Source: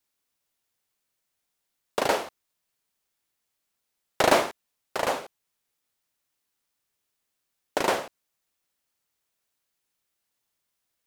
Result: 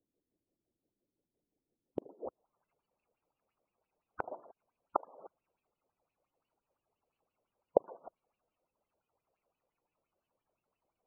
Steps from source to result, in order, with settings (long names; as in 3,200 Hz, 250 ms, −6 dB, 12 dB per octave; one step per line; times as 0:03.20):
running median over 25 samples
gate on every frequency bin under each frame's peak −15 dB strong
low-pass filter sweep 320 Hz → 8,600 Hz, 0:02.19–0:03.04
gate with flip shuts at −22 dBFS, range −33 dB
auto-filter bell 5.8 Hz 480–3,100 Hz +16 dB
level +1 dB